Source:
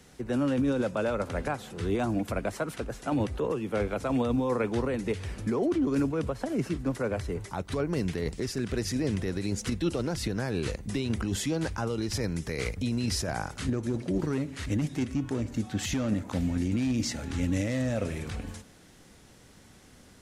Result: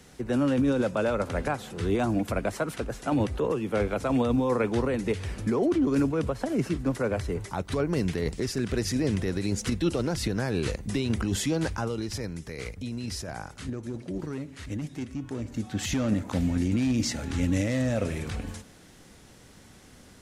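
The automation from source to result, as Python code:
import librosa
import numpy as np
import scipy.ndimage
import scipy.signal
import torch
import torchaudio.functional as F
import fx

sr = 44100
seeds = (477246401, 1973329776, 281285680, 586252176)

y = fx.gain(x, sr, db=fx.line((11.69, 2.5), (12.37, -5.0), (15.16, -5.0), (16.01, 2.5)))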